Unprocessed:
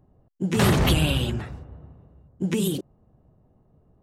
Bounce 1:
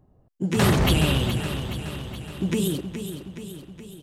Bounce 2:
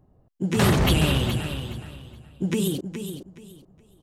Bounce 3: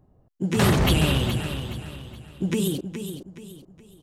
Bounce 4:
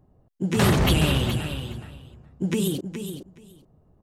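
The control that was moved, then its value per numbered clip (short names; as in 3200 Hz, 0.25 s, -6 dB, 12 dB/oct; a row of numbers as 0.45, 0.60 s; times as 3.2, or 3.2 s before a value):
feedback echo, feedback: 59, 24, 36, 15%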